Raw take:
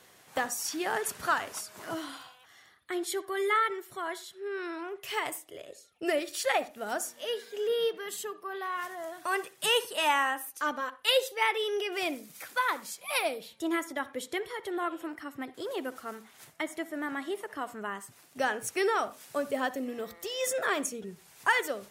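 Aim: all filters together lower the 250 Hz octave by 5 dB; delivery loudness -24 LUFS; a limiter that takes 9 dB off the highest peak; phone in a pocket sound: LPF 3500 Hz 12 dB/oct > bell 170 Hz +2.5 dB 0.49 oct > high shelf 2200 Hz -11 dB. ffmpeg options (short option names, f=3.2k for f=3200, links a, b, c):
-af "equalizer=f=250:t=o:g=-7.5,alimiter=limit=-21dB:level=0:latency=1,lowpass=3.5k,equalizer=f=170:t=o:w=0.49:g=2.5,highshelf=f=2.2k:g=-11,volume=13.5dB"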